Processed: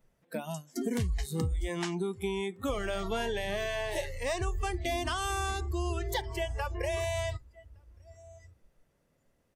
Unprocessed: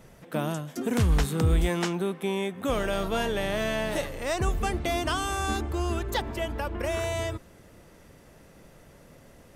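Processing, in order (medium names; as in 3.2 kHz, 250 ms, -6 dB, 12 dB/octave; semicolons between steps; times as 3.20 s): compression 10:1, threshold -27 dBFS, peak gain reduction 9.5 dB; on a send: delay 1164 ms -17.5 dB; on the sum: spectral noise reduction 21 dB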